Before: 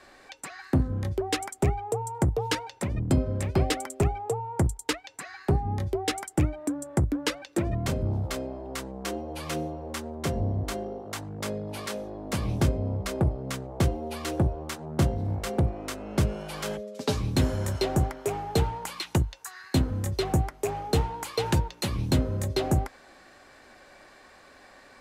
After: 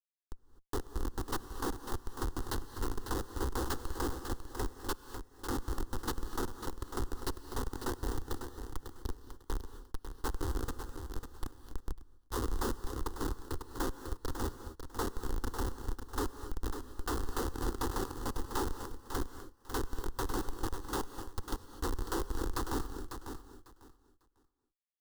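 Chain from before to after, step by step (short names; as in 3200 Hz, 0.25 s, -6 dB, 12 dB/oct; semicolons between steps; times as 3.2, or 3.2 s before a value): self-modulated delay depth 0.39 ms; LPF 4600 Hz 24 dB/oct; spectral gate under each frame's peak -15 dB weak; 21.01–21.77 differentiator; in parallel at +0.5 dB: compressor 16:1, threshold -48 dBFS, peak gain reduction 19.5 dB; on the sum: Schmitt trigger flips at -31.5 dBFS; fixed phaser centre 630 Hz, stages 6; feedback echo 0.548 s, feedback 19%, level -8.5 dB; non-linear reverb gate 0.28 s rising, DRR 11.5 dB; 11.92–13.59 three-band expander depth 70%; gain +9.5 dB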